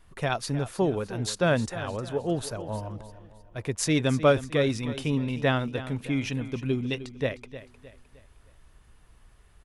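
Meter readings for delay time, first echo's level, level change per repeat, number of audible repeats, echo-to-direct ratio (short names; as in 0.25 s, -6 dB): 0.308 s, -14.0 dB, -8.0 dB, 3, -13.0 dB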